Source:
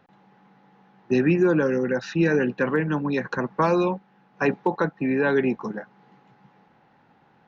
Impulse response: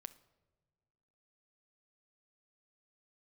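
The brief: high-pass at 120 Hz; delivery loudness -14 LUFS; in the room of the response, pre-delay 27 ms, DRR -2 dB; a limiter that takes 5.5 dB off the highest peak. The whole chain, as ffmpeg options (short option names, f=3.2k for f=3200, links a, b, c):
-filter_complex "[0:a]highpass=120,alimiter=limit=-15.5dB:level=0:latency=1,asplit=2[a][b];[1:a]atrim=start_sample=2205,adelay=27[c];[b][c]afir=irnorm=-1:irlink=0,volume=7.5dB[d];[a][d]amix=inputs=2:normalize=0,volume=8dB"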